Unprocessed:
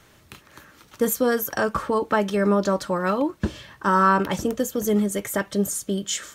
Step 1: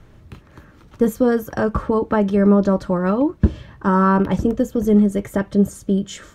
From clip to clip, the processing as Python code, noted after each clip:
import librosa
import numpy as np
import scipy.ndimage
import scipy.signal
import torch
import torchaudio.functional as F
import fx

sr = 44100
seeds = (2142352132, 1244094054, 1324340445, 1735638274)

y = fx.tilt_eq(x, sr, slope=-3.5)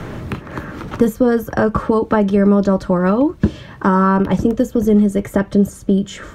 y = fx.band_squash(x, sr, depth_pct=70)
y = y * librosa.db_to_amplitude(2.5)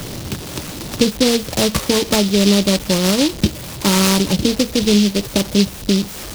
y = fx.delta_mod(x, sr, bps=32000, step_db=-23.0)
y = fx.noise_mod_delay(y, sr, seeds[0], noise_hz=3900.0, depth_ms=0.19)
y = y * librosa.db_to_amplitude(-1.0)